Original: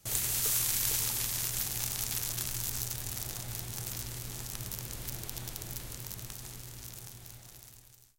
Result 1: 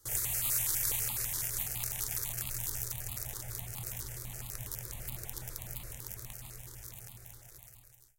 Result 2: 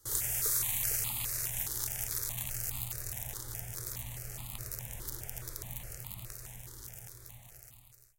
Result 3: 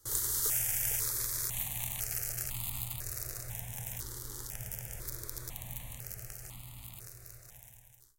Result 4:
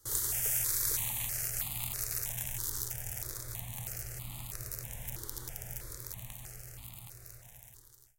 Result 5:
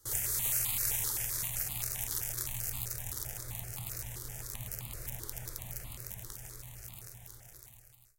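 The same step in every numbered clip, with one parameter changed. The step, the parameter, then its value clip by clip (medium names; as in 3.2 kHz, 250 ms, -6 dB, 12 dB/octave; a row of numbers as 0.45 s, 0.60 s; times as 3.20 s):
stepped phaser, rate: 12 Hz, 4.8 Hz, 2 Hz, 3.1 Hz, 7.7 Hz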